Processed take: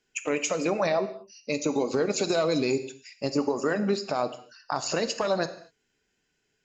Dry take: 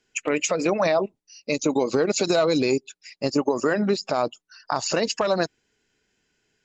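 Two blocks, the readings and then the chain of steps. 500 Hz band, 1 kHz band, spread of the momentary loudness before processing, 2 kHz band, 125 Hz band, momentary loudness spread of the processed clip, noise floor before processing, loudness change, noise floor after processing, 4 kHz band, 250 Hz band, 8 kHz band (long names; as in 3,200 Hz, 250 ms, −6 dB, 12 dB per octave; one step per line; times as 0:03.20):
−4.0 dB, −4.0 dB, 9 LU, −4.0 dB, −3.5 dB, 9 LU, −76 dBFS, −4.0 dB, −76 dBFS, −4.0 dB, −4.0 dB, can't be measured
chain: reverb whose tail is shaped and stops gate 270 ms falling, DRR 9.5 dB
level −4.5 dB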